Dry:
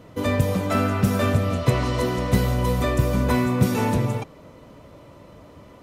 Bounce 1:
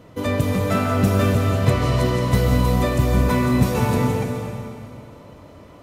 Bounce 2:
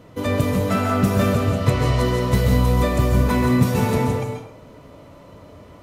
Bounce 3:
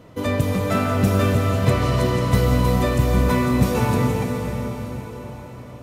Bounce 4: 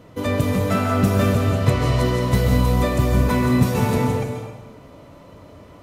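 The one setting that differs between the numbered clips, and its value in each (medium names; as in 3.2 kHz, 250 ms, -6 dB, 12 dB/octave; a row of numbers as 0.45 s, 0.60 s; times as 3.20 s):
plate-style reverb, RT60: 2.5 s, 0.51 s, 5.3 s, 1.1 s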